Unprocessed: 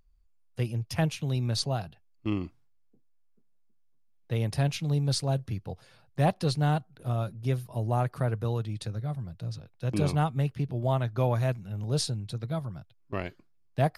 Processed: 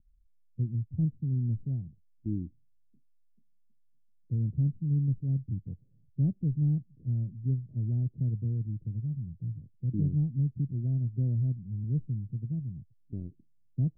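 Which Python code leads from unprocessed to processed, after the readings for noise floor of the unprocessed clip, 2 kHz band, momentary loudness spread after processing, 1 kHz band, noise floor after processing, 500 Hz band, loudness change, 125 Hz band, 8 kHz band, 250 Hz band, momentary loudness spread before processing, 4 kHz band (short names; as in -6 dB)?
-63 dBFS, under -40 dB, 13 LU, under -35 dB, -63 dBFS, -20.0 dB, -1.5 dB, 0.0 dB, under -35 dB, -1.0 dB, 11 LU, under -40 dB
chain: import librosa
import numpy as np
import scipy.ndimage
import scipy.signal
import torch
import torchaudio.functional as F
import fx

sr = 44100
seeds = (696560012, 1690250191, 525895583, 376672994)

y = scipy.signal.sosfilt(scipy.signal.cheby2(4, 70, 1200.0, 'lowpass', fs=sr, output='sos'), x)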